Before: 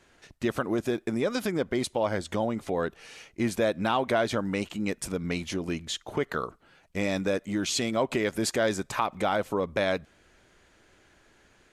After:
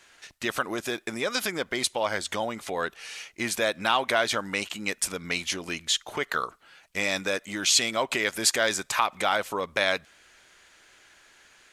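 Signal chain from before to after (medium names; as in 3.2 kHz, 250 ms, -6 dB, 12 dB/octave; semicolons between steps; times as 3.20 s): tilt shelf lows -9 dB, about 690 Hz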